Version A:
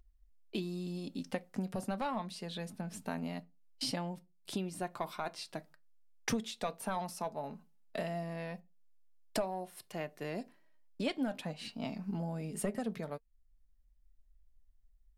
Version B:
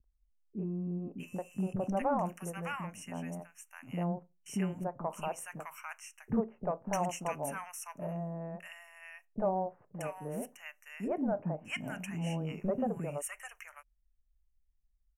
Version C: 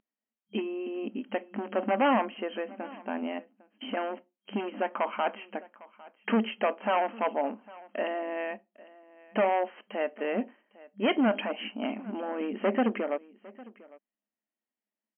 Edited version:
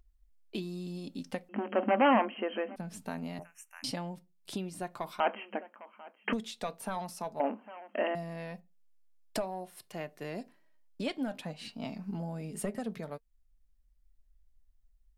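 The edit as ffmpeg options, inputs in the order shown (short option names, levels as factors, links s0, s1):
-filter_complex "[2:a]asplit=3[s0][s1][s2];[0:a]asplit=5[s3][s4][s5][s6][s7];[s3]atrim=end=1.492[s8];[s0]atrim=start=1.488:end=2.762[s9];[s4]atrim=start=2.758:end=3.392[s10];[1:a]atrim=start=3.388:end=3.842[s11];[s5]atrim=start=3.838:end=5.202[s12];[s1]atrim=start=5.198:end=6.332[s13];[s6]atrim=start=6.328:end=7.402[s14];[s2]atrim=start=7.398:end=8.152[s15];[s7]atrim=start=8.148[s16];[s8][s9]acrossfade=d=0.004:c1=hsin:c2=hsin[s17];[s17][s10]acrossfade=d=0.004:c1=hsin:c2=hsin[s18];[s18][s11]acrossfade=d=0.004:c1=hsin:c2=hsin[s19];[s19][s12]acrossfade=d=0.004:c1=hsin:c2=hsin[s20];[s20][s13]acrossfade=d=0.004:c1=hsin:c2=hsin[s21];[s21][s14]acrossfade=d=0.004:c1=hsin:c2=hsin[s22];[s22][s15]acrossfade=d=0.004:c1=hsin:c2=hsin[s23];[s23][s16]acrossfade=d=0.004:c1=hsin:c2=hsin"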